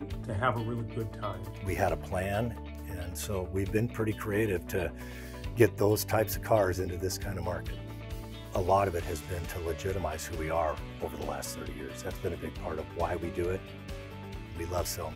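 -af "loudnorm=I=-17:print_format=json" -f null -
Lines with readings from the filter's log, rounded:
"input_i" : "-33.3",
"input_tp" : "-9.9",
"input_lra" : "5.6",
"input_thresh" : "-43.3",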